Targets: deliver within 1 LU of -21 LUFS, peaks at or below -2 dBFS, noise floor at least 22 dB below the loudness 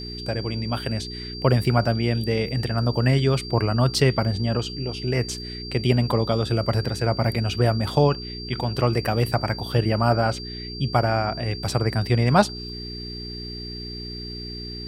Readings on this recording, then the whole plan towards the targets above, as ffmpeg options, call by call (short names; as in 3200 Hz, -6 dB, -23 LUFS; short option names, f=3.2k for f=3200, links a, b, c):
hum 60 Hz; harmonics up to 420 Hz; hum level -35 dBFS; steady tone 4700 Hz; tone level -35 dBFS; loudness -23.5 LUFS; peak -3.5 dBFS; loudness target -21.0 LUFS
-> -af "bandreject=f=60:t=h:w=4,bandreject=f=120:t=h:w=4,bandreject=f=180:t=h:w=4,bandreject=f=240:t=h:w=4,bandreject=f=300:t=h:w=4,bandreject=f=360:t=h:w=4,bandreject=f=420:t=h:w=4"
-af "bandreject=f=4.7k:w=30"
-af "volume=2.5dB,alimiter=limit=-2dB:level=0:latency=1"